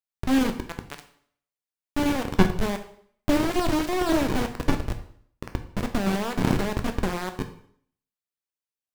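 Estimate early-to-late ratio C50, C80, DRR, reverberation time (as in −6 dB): 11.0 dB, 14.5 dB, 6.0 dB, 0.60 s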